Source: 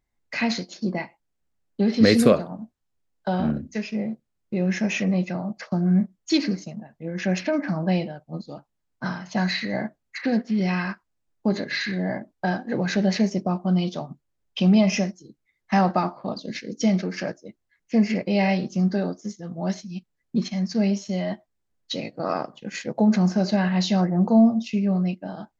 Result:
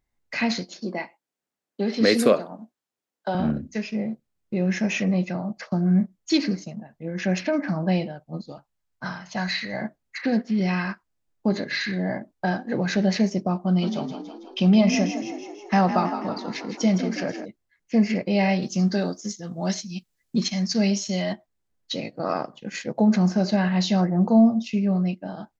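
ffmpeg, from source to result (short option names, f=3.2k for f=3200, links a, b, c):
-filter_complex "[0:a]asettb=1/sr,asplit=3[a][b][c];[a]atrim=end=0.804[d];[b]atrim=start=0.8:end=3.35,asetpts=PTS-STARTPTS,afade=t=in:d=0.004:c=qsin,afade=t=out:st=2.546:d=0.004:c=qsin,highpass=270[e];[c]atrim=start=3.346[f];[d][e]acrossfade=d=0.004:c1=hsin:c2=qsin[g];[g][f]acrossfade=d=0.004:c1=qsin:c2=hsin,asettb=1/sr,asplit=3[h][i][j];[h]atrim=end=8.524[k];[i]atrim=start=8.52:end=9.82,asetpts=PTS-STARTPTS,afade=t=in:d=0.004:c=qsin,afade=t=out:st=1.296:d=0.004:c=qsin,equalizer=f=280:w=0.7:g=-7.5[l];[j]atrim=start=9.816[m];[k][l]acrossfade=d=0.004:c1=hsin:c2=qsin[n];[n][m]acrossfade=d=0.004:c1=qsin:c2=hsin,asplit=3[o][p][q];[o]afade=t=out:st=13.81:d=0.02[r];[p]asplit=8[s][t][u][v][w][x][y][z];[t]adelay=163,afreqshift=39,volume=-9.5dB[aa];[u]adelay=326,afreqshift=78,volume=-14.4dB[ab];[v]adelay=489,afreqshift=117,volume=-19.3dB[ac];[w]adelay=652,afreqshift=156,volume=-24.1dB[ad];[x]adelay=815,afreqshift=195,volume=-29dB[ae];[y]adelay=978,afreqshift=234,volume=-33.9dB[af];[z]adelay=1141,afreqshift=273,volume=-38.8dB[ag];[s][aa][ab][ac][ad][ae][af][ag]amix=inputs=8:normalize=0,afade=t=in:st=13.81:d=0.02,afade=t=out:st=17.44:d=0.02[ah];[q]afade=t=in:st=17.44:d=0.02[ai];[r][ah][ai]amix=inputs=3:normalize=0,asettb=1/sr,asplit=3[aj][ak][al];[aj]atrim=end=18.624[am];[ak]atrim=start=18.62:end=21.33,asetpts=PTS-STARTPTS,afade=t=in:d=0.004:c=qsin,afade=t=out:st=2.706:d=0.004:c=qsin,highshelf=f=2.6k:g=11.5[an];[al]atrim=start=21.326[ao];[am][an]acrossfade=d=0.004:c1=hsin:c2=qsin[ap];[ap][ao]acrossfade=d=0.004:c1=qsin:c2=hsin"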